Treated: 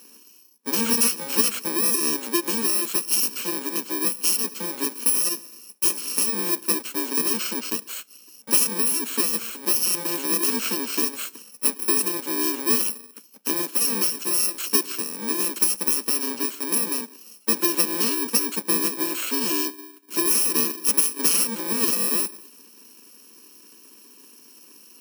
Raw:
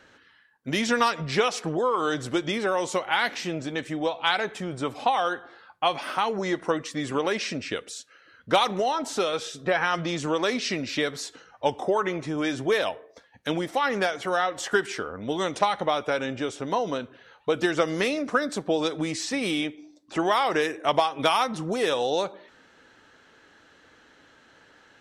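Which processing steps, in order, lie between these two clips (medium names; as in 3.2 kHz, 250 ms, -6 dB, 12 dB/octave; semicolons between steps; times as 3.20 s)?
bit-reversed sample order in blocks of 64 samples; in parallel at 0 dB: compression, threshold -37 dBFS, peak gain reduction 19.5 dB; on the sum: elliptic high-pass 210 Hz, stop band 50 dB; trim +2 dB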